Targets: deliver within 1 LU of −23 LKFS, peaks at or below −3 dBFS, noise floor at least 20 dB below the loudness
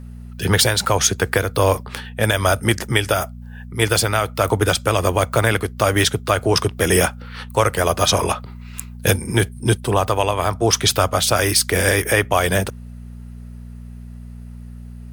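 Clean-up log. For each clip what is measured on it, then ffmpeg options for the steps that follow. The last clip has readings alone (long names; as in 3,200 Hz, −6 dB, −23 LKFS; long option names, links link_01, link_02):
mains hum 60 Hz; hum harmonics up to 240 Hz; level of the hum −32 dBFS; integrated loudness −18.5 LKFS; sample peak −2.5 dBFS; target loudness −23.0 LKFS
→ -af "bandreject=frequency=60:width_type=h:width=4,bandreject=frequency=120:width_type=h:width=4,bandreject=frequency=180:width_type=h:width=4,bandreject=frequency=240:width_type=h:width=4"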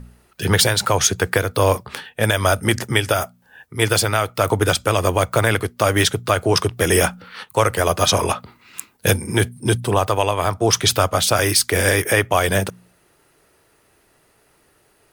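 mains hum none found; integrated loudness −18.5 LKFS; sample peak −2.5 dBFS; target loudness −23.0 LKFS
→ -af "volume=-4.5dB"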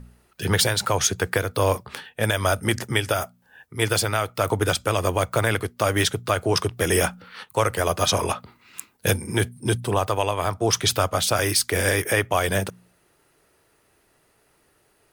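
integrated loudness −23.0 LKFS; sample peak −7.0 dBFS; background noise floor −64 dBFS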